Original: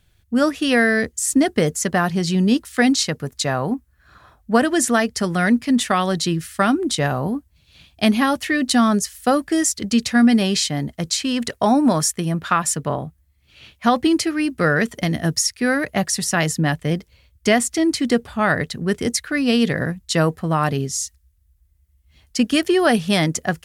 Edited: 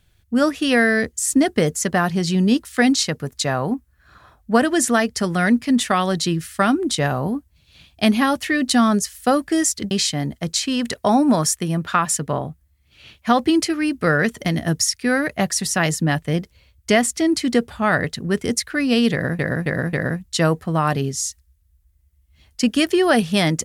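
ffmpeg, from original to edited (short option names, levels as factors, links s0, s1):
-filter_complex "[0:a]asplit=5[s0][s1][s2][s3][s4];[s0]atrim=end=9.912[s5];[s1]atrim=start=10.478:end=19.962[s6];[s2]atrim=start=19.688:end=19.962[s7];[s3]atrim=start=19.688:end=19.962[s8];[s4]atrim=start=19.688[s9];[s5][s6]acrossfade=d=0.004:c1=hsin:c2=hsin[s10];[s10][s7]acrossfade=d=0.004:c1=hsin:c2=hsin[s11];[s11][s8]acrossfade=d=0.004:c1=hsin:c2=hsin[s12];[s12][s9]acrossfade=d=0.004:c1=hsin:c2=hsin"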